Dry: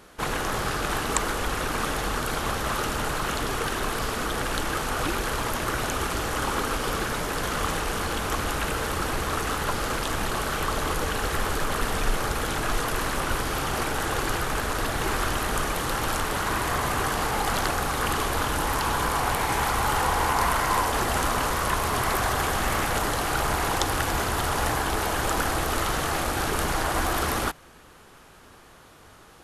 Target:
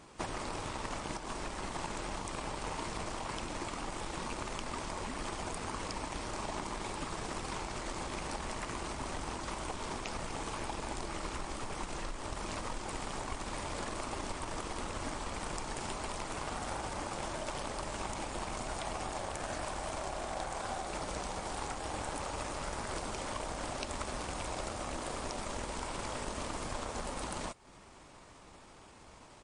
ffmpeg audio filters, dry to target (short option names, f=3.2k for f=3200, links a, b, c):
-af "acompressor=threshold=-34dB:ratio=8,aeval=exprs='0.0891*(cos(1*acos(clip(val(0)/0.0891,-1,1)))-cos(1*PI/2))+0.00562*(cos(7*acos(clip(val(0)/0.0891,-1,1)))-cos(7*PI/2))':c=same,asetrate=33038,aresample=44100,atempo=1.33484,volume=1dB" -ar 24000 -c:a libmp3lame -b:a 40k